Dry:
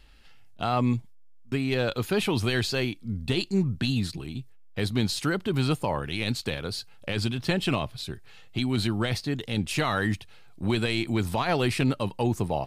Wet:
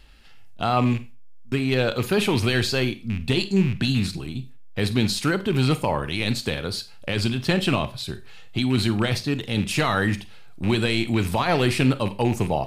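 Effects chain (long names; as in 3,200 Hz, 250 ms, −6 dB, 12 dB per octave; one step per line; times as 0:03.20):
loose part that buzzes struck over −27 dBFS, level −29 dBFS
four-comb reverb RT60 0.31 s, combs from 31 ms, DRR 12 dB
level +4 dB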